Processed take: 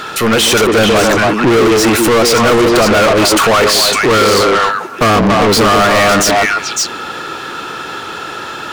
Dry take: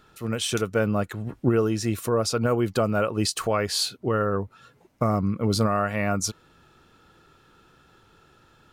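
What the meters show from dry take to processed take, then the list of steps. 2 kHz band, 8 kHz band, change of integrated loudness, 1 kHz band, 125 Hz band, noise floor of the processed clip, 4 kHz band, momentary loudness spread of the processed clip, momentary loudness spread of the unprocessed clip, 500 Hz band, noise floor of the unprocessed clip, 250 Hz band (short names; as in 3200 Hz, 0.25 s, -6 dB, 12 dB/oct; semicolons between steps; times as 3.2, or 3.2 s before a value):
+21.5 dB, +17.0 dB, +15.5 dB, +19.0 dB, +7.5 dB, -25 dBFS, +18.5 dB, 14 LU, 5 LU, +15.5 dB, -59 dBFS, +13.5 dB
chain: delay with a stepping band-pass 0.139 s, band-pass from 320 Hz, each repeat 1.4 oct, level -1 dB; overdrive pedal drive 36 dB, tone 6100 Hz, clips at -9 dBFS; gain +6 dB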